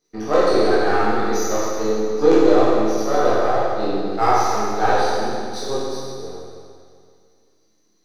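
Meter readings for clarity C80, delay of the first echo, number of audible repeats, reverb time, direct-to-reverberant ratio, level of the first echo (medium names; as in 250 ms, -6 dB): -1.5 dB, no echo, no echo, 2.2 s, -10.0 dB, no echo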